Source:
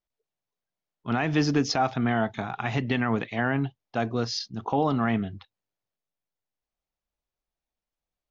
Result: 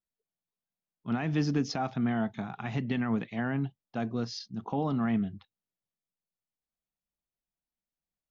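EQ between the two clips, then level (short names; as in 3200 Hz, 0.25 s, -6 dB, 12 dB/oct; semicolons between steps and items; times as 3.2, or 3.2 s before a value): bell 190 Hz +9.5 dB 1.1 oct; -9.0 dB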